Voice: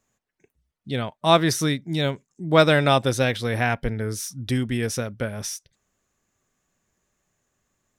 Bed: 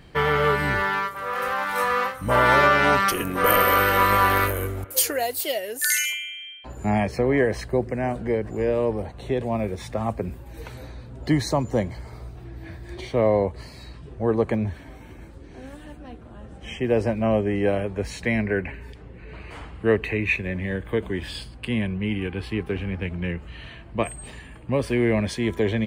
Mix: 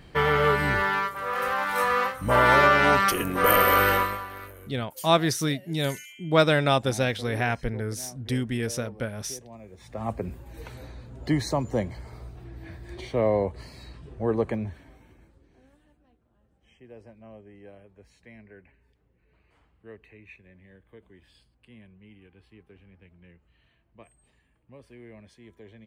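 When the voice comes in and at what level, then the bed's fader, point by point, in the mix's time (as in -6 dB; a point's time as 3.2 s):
3.80 s, -3.5 dB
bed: 3.93 s -1 dB
4.26 s -20 dB
9.66 s -20 dB
10.09 s -3.5 dB
14.39 s -3.5 dB
16.2 s -26 dB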